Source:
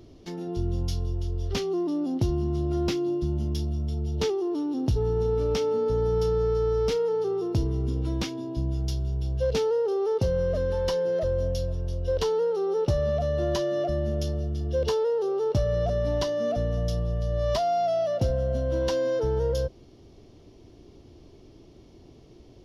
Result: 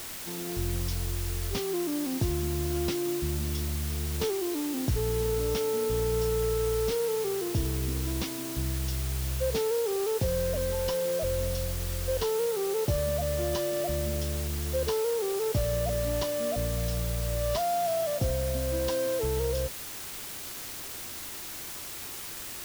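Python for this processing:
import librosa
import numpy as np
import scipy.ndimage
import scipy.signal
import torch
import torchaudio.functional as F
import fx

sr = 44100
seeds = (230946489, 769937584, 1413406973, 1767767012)

y = fx.quant_dither(x, sr, seeds[0], bits=6, dither='triangular')
y = y * librosa.db_to_amplitude(-3.5)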